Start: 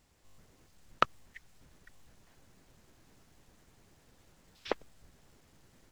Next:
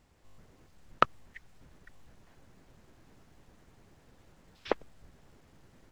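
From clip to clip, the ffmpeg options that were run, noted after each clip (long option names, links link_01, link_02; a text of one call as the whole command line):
ffmpeg -i in.wav -af "highshelf=frequency=3300:gain=-9,volume=4dB" out.wav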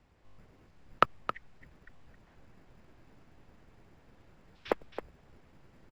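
ffmpeg -i in.wav -filter_complex "[0:a]acrossover=split=280|670|2900[link_01][link_02][link_03][link_04];[link_01]acrusher=samples=18:mix=1:aa=0.000001[link_05];[link_04]adynamicsmooth=sensitivity=7.5:basefreq=5200[link_06];[link_05][link_02][link_03][link_06]amix=inputs=4:normalize=0,aecho=1:1:268:0.299" out.wav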